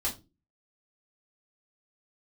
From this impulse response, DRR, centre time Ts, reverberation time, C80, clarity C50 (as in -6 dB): -6.5 dB, 17 ms, 0.25 s, 20.5 dB, 12.5 dB